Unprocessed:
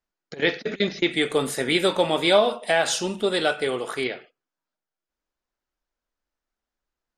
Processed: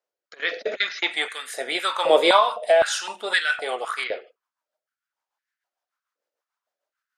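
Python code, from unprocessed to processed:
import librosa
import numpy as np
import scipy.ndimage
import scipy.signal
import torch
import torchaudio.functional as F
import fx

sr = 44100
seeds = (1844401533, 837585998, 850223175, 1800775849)

y = fx.rotary_switch(x, sr, hz=0.8, then_hz=6.7, switch_at_s=2.74)
y = fx.filter_held_highpass(y, sr, hz=3.9, low_hz=510.0, high_hz=1700.0)
y = y * 10.0 ** (1.5 / 20.0)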